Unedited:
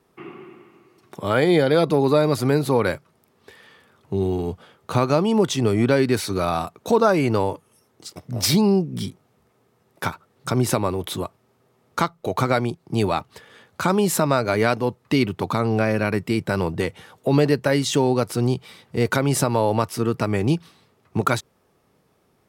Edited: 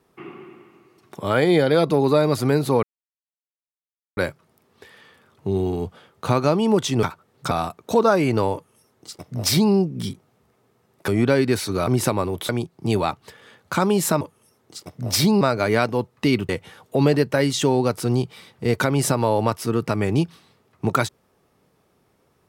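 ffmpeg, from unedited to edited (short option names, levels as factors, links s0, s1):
-filter_complex "[0:a]asplit=10[s0][s1][s2][s3][s4][s5][s6][s7][s8][s9];[s0]atrim=end=2.83,asetpts=PTS-STARTPTS,afade=t=out:st=2.826:d=0.004:c=hsin,apad=pad_dur=1.34[s10];[s1]atrim=start=2.83:end=5.692,asetpts=PTS-STARTPTS,afade=t=in:d=0.004:c=hsin[s11];[s2]atrim=start=10.048:end=10.532[s12];[s3]atrim=start=6.478:end=10.052[s13];[s4]atrim=start=5.688:end=6.482[s14];[s5]atrim=start=10.528:end=11.152[s15];[s6]atrim=start=12.568:end=14.292[s16];[s7]atrim=start=7.508:end=8.712[s17];[s8]atrim=start=14.288:end=15.372[s18];[s9]atrim=start=16.808[s19];[s10][s11]concat=n=2:v=0:a=1[s20];[s20][s12]acrossfade=d=0.004:c1=hsin:c2=hsin[s21];[s21][s13]acrossfade=d=0.004:c1=hsin:c2=hsin[s22];[s22][s14]acrossfade=d=0.004:c1=hsin:c2=hsin[s23];[s23][s15]acrossfade=d=0.004:c1=hsin:c2=hsin[s24];[s24][s16]acrossfade=d=0.004:c1=hsin:c2=hsin[s25];[s25][s17]acrossfade=d=0.004:c1=hsin:c2=hsin[s26];[s26][s18]acrossfade=d=0.004:c1=hsin:c2=hsin[s27];[s27][s19]acrossfade=d=0.004:c1=hsin:c2=hsin"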